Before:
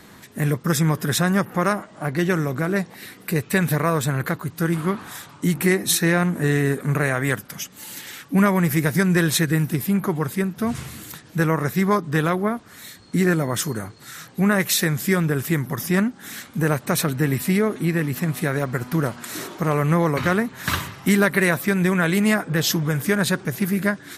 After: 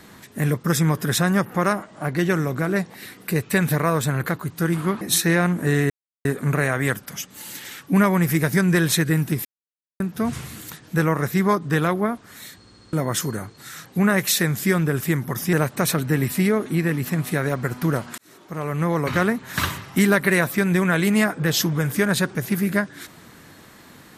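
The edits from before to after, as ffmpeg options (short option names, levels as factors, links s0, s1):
-filter_complex "[0:a]asplit=12[s0][s1][s2][s3][s4][s5][s6][s7][s8][s9][s10][s11];[s0]atrim=end=5.012[s12];[s1]atrim=start=5.778:end=6.67,asetpts=PTS-STARTPTS,afade=t=out:st=0.888:d=0.004:c=hsin,apad=pad_dur=0.35[s13];[s2]atrim=start=6.67:end=9.87,asetpts=PTS-STARTPTS,afade=t=in:d=0.004:c=hsin,afade=t=out:st=3.196:d=0.004:c=hsin[s14];[s3]atrim=start=9.87:end=10.42,asetpts=PTS-STARTPTS,volume=0[s15];[s4]atrim=start=10.42:end=13.072,asetpts=PTS-STARTPTS,afade=t=in:d=0.004:c=hsin[s16];[s5]atrim=start=12.998:end=13.072[s17];[s6]atrim=start=12.998:end=13.072[s18];[s7]atrim=start=12.998:end=13.072[s19];[s8]atrim=start=12.998:end=13.072[s20];[s9]atrim=start=13.348:end=15.952[s21];[s10]atrim=start=16.628:end=19.28,asetpts=PTS-STARTPTS,afade=t=out:st=2.648:d=0.004:c=hsin[s22];[s11]atrim=start=19.28,asetpts=PTS-STARTPTS,afade=t=in:d=1.01[s23];[s13][s14][s15][s16]concat=n=4:v=0:a=1[s24];[s12][s24]acrossfade=d=0.004:c1=hsin:c2=hsin[s25];[s25][s17]acrossfade=d=0.004:c1=hsin:c2=hsin[s26];[s26][s18]acrossfade=d=0.004:c1=hsin:c2=hsin[s27];[s27][s19]acrossfade=d=0.004:c1=hsin:c2=hsin[s28];[s28][s20]acrossfade=d=0.004:c1=hsin:c2=hsin[s29];[s29][s21]acrossfade=d=0.004:c1=hsin:c2=hsin[s30];[s22][s23]concat=n=2:v=0:a=1[s31];[s30][s31]acrossfade=d=0.004:c1=hsin:c2=hsin"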